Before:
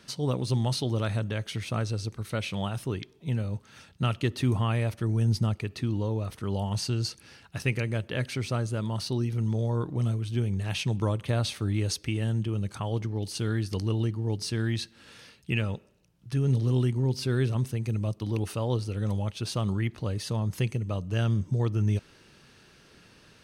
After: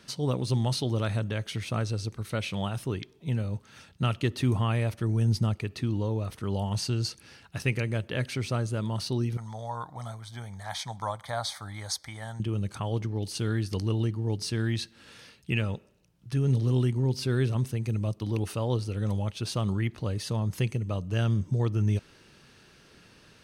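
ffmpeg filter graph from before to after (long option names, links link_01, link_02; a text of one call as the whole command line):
ffmpeg -i in.wav -filter_complex "[0:a]asettb=1/sr,asplit=3[link_01][link_02][link_03];[link_01]atrim=end=9.374[link_04];[link_02]atrim=start=9.37:end=12.4,asetpts=PTS-STARTPTS,afade=type=in:duration=0.004:curve=qsin,afade=type=out:start_time=3.026:duration=0.004:curve=qsin,asuperstop=centerf=2700:order=4:qfactor=2.7,lowshelf=frequency=540:width_type=q:width=3:gain=-12[link_05];[link_03]atrim=start=12.396[link_06];[link_04][link_05]acrossfade=duration=0.004:curve1=hsin:curve2=qsin[link_07];[link_07][link_06]acrossfade=duration=0.004:curve1=qsin:curve2=hsin" out.wav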